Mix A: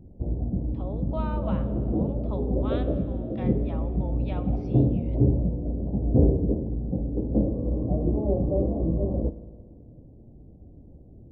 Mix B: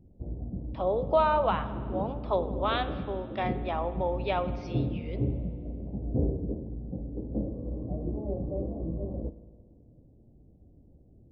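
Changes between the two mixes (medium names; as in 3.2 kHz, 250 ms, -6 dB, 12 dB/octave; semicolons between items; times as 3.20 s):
speech +11.5 dB; background -8.5 dB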